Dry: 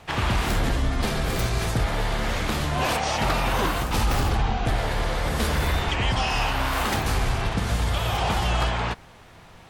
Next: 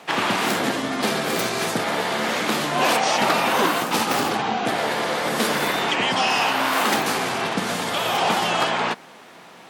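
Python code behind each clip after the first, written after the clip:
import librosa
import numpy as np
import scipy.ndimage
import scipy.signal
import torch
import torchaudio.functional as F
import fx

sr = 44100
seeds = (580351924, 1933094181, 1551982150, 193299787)

y = scipy.signal.sosfilt(scipy.signal.butter(4, 200.0, 'highpass', fs=sr, output='sos'), x)
y = y * 10.0 ** (5.5 / 20.0)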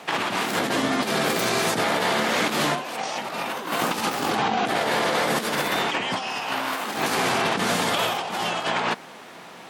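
y = fx.over_compress(x, sr, threshold_db=-24.0, ratio=-0.5)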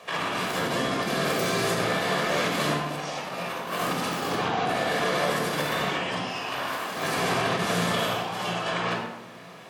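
y = fx.room_shoebox(x, sr, seeds[0], volume_m3=3300.0, walls='furnished', distance_m=5.7)
y = y * 10.0 ** (-8.0 / 20.0)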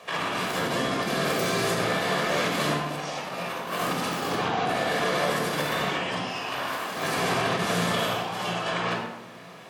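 y = np.clip(x, -10.0 ** (-15.5 / 20.0), 10.0 ** (-15.5 / 20.0))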